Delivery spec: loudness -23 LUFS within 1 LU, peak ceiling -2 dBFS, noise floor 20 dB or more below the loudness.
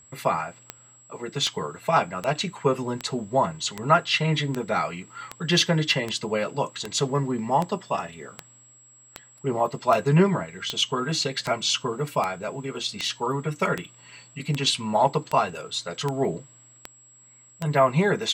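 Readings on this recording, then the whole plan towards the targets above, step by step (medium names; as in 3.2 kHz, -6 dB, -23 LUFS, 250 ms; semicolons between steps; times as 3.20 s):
clicks found 23; steady tone 7.7 kHz; tone level -51 dBFS; loudness -25.0 LUFS; peak level -5.5 dBFS; loudness target -23.0 LUFS
-> de-click; band-stop 7.7 kHz, Q 30; trim +2 dB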